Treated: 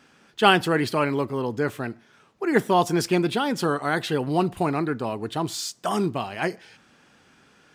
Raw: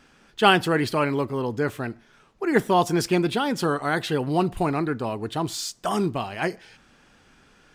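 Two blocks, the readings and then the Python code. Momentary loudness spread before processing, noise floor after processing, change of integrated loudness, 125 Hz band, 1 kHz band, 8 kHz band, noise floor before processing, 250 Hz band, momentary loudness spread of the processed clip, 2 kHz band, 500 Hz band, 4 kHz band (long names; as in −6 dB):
8 LU, −58 dBFS, 0.0 dB, −0.5 dB, 0.0 dB, 0.0 dB, −58 dBFS, 0.0 dB, 8 LU, 0.0 dB, 0.0 dB, 0.0 dB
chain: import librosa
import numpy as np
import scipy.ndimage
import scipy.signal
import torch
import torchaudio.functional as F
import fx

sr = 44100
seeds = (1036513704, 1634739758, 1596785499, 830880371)

y = scipy.signal.sosfilt(scipy.signal.butter(2, 98.0, 'highpass', fs=sr, output='sos'), x)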